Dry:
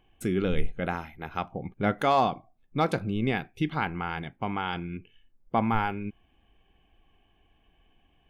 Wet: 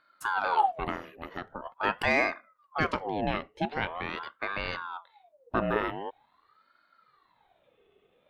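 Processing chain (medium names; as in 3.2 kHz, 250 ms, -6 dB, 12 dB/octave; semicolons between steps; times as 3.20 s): 0.95–1.67 s: compression 4:1, threshold -31 dBFS, peak gain reduction 6 dB; 2.86–3.88 s: low-pass 5.2 kHz -> 9 kHz 12 dB/octave; ring modulator with a swept carrier 900 Hz, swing 55%, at 0.44 Hz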